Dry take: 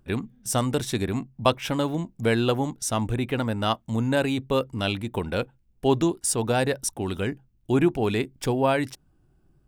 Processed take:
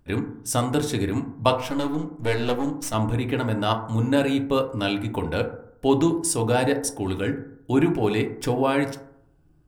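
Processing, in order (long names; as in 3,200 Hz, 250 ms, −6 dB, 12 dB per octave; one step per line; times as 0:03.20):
0:01.53–0:02.94: gain on one half-wave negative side −12 dB
feedback delay network reverb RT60 0.69 s, low-frequency decay 1.05×, high-frequency decay 0.3×, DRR 3.5 dB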